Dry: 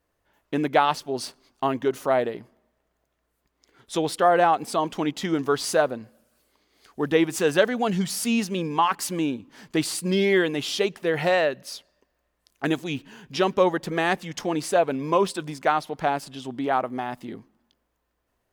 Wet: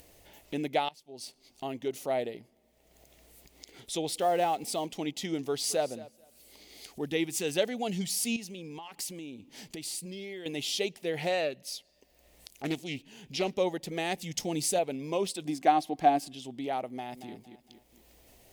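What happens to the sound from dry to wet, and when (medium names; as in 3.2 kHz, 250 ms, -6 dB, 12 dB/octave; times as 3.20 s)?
0.89–2.02 s: fade in linear, from -23.5 dB
4.15–4.86 s: companding laws mixed up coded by mu
5.43–5.87 s: echo throw 220 ms, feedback 10%, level -18 dB
7.05–7.56 s: peaking EQ 600 Hz -6 dB
8.36–10.46 s: compression 4:1, threshold -32 dBFS
11.16–13.55 s: loudspeaker Doppler distortion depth 0.23 ms
14.18–14.79 s: tone controls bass +7 dB, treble +6 dB
15.45–16.33 s: small resonant body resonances 300/730/1100/1600 Hz, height 13 dB, ringing for 40 ms
16.89–17.32 s: echo throw 230 ms, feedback 20%, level -12 dB
whole clip: high-order bell 1.3 kHz -11 dB 1 oct; upward compressor, threshold -32 dBFS; treble shelf 2.9 kHz +8 dB; trim -8.5 dB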